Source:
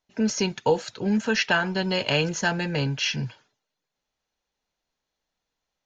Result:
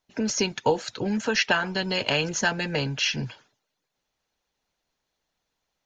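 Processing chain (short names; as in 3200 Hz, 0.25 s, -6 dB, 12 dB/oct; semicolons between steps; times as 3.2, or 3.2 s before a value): harmonic-percussive split harmonic -7 dB; in parallel at 0 dB: compressor, threshold -34 dBFS, peak gain reduction 14.5 dB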